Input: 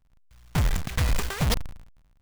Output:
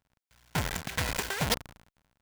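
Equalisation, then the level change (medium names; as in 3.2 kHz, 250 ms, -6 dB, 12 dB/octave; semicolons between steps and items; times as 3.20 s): high-pass 280 Hz 6 dB/octave; peaking EQ 1.3 kHz +3 dB 0.76 oct; band-stop 1.2 kHz, Q 6.3; 0.0 dB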